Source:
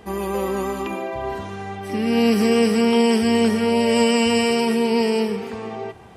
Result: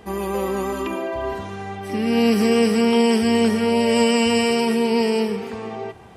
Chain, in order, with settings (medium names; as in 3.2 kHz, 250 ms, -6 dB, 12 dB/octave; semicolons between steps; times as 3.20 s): 0.72–1.33 s: comb 3.2 ms, depth 55%